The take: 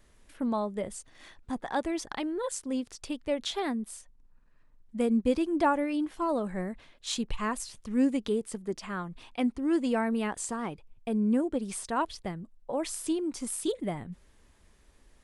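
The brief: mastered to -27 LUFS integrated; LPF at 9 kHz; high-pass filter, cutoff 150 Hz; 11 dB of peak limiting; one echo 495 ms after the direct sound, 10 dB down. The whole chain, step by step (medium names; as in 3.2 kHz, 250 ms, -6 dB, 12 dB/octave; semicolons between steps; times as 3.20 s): high-pass 150 Hz; low-pass 9 kHz; peak limiter -25 dBFS; delay 495 ms -10 dB; trim +7.5 dB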